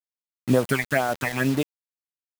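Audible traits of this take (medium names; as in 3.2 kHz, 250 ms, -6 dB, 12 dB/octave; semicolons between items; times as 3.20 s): tremolo triangle 4.4 Hz, depth 45%; phasing stages 8, 2.1 Hz, lowest notch 360–2500 Hz; a quantiser's noise floor 6-bit, dither none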